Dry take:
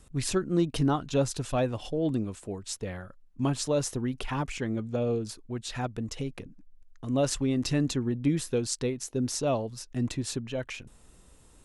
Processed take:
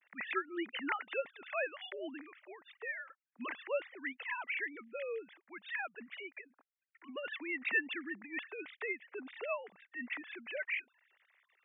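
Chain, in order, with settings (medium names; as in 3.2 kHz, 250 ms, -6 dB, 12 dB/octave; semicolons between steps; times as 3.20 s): formants replaced by sine waves; 7.06–9.51 s: compressor with a negative ratio -28 dBFS, ratio -1; band-pass filter 2 kHz, Q 4.4; trim +11.5 dB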